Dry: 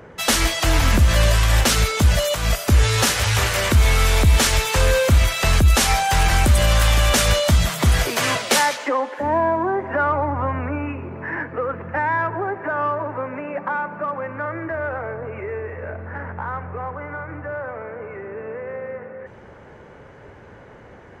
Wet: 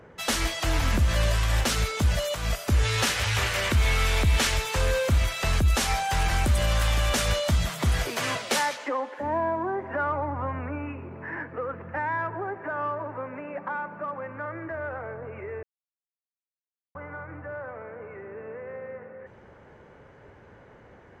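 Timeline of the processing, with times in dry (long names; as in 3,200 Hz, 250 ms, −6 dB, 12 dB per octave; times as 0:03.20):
0:02.85–0:04.54: parametric band 2,500 Hz +4 dB 1.6 octaves
0:15.63–0:16.95: silence
whole clip: high-shelf EQ 8,000 Hz −4 dB; level −7.5 dB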